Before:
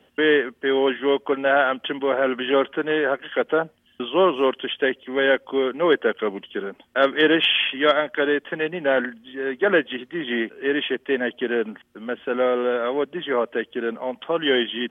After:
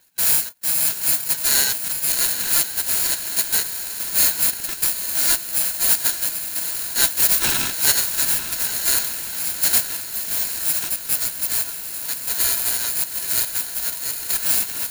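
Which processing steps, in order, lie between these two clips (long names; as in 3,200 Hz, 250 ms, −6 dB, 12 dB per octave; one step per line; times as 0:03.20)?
samples in bit-reversed order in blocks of 128 samples
high-pass filter 240 Hz 24 dB per octave
on a send: feedback delay with all-pass diffusion 862 ms, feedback 56%, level −8 dB
on the sum: ring modulator with a square carrier 1,200 Hz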